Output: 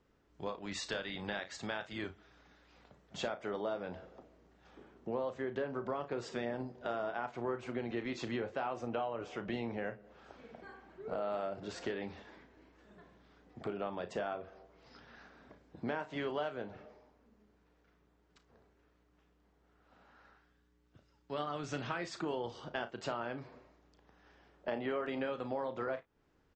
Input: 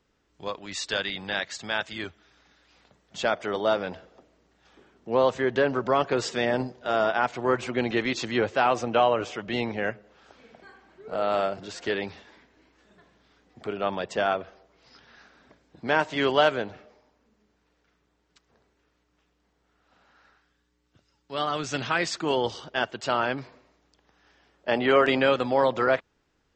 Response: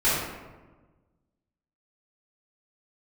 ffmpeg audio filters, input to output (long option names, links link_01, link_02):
-af "highshelf=frequency=2100:gain=-10,acompressor=threshold=-36dB:ratio=5,aecho=1:1:34|55:0.282|0.133"